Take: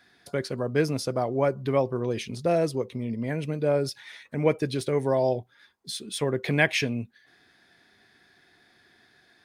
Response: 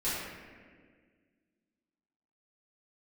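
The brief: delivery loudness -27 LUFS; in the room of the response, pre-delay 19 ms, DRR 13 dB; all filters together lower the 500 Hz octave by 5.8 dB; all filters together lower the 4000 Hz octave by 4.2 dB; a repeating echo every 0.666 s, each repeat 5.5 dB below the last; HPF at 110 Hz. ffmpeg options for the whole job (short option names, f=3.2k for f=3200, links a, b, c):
-filter_complex "[0:a]highpass=110,equalizer=f=500:t=o:g=-7,equalizer=f=4k:t=o:g=-5.5,aecho=1:1:666|1332|1998|2664|3330|3996|4662:0.531|0.281|0.149|0.079|0.0419|0.0222|0.0118,asplit=2[a][b];[1:a]atrim=start_sample=2205,adelay=19[c];[b][c]afir=irnorm=-1:irlink=0,volume=-20.5dB[d];[a][d]amix=inputs=2:normalize=0,volume=3dB"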